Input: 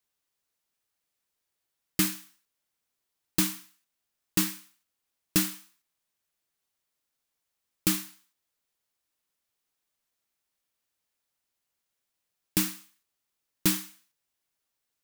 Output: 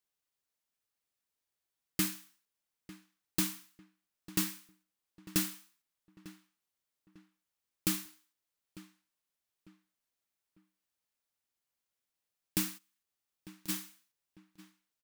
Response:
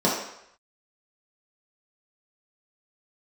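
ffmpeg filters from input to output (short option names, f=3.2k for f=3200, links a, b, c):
-filter_complex "[0:a]asplit=3[a][b][c];[a]afade=t=out:st=12.77:d=0.02[d];[b]acompressor=threshold=-50dB:ratio=5,afade=t=in:st=12.77:d=0.02,afade=t=out:st=13.68:d=0.02[e];[c]afade=t=in:st=13.68:d=0.02[f];[d][e][f]amix=inputs=3:normalize=0,asplit=2[g][h];[h]adelay=899,lowpass=f=2.3k:p=1,volume=-16.5dB,asplit=2[i][j];[j]adelay=899,lowpass=f=2.3k:p=1,volume=0.37,asplit=2[k][l];[l]adelay=899,lowpass=f=2.3k:p=1,volume=0.37[m];[g][i][k][m]amix=inputs=4:normalize=0,volume=-6dB"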